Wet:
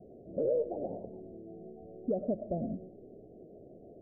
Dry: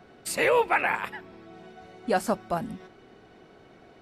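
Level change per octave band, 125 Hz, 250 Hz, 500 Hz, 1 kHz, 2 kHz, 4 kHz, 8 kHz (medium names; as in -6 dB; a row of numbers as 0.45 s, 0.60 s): -2.0 dB, -2.0 dB, -5.5 dB, -20.5 dB, under -40 dB, under -40 dB, under -40 dB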